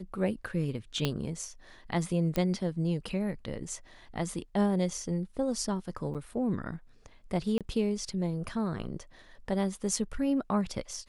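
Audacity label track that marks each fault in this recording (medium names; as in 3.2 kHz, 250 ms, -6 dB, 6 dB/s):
1.050000	1.050000	pop -14 dBFS
2.360000	2.360000	pop -17 dBFS
6.140000	6.150000	dropout 7.3 ms
7.580000	7.610000	dropout 27 ms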